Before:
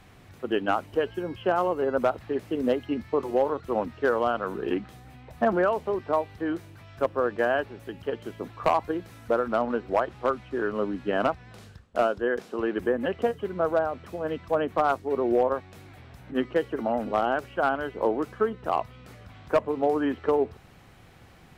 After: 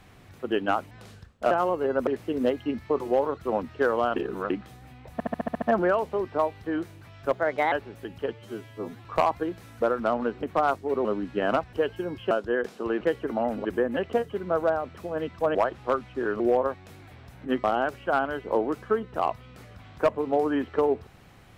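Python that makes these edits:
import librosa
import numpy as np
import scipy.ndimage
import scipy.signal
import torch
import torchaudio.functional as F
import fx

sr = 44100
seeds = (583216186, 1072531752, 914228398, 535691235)

y = fx.edit(x, sr, fx.swap(start_s=0.91, length_s=0.58, other_s=11.44, other_length_s=0.6),
    fx.cut(start_s=2.05, length_s=0.25),
    fx.reverse_span(start_s=4.39, length_s=0.34),
    fx.stutter(start_s=5.36, slice_s=0.07, count=8),
    fx.speed_span(start_s=7.07, length_s=0.49, speed=1.26),
    fx.stretch_span(start_s=8.17, length_s=0.36, factor=2.0),
    fx.swap(start_s=9.91, length_s=0.85, other_s=14.64, other_length_s=0.62),
    fx.move(start_s=16.5, length_s=0.64, to_s=12.74), tone=tone)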